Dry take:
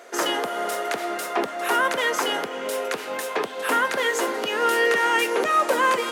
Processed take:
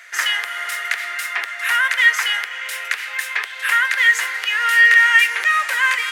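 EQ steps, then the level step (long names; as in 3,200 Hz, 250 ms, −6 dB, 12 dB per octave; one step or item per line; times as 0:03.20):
high-pass with resonance 1,900 Hz, resonance Q 3.6
+2.5 dB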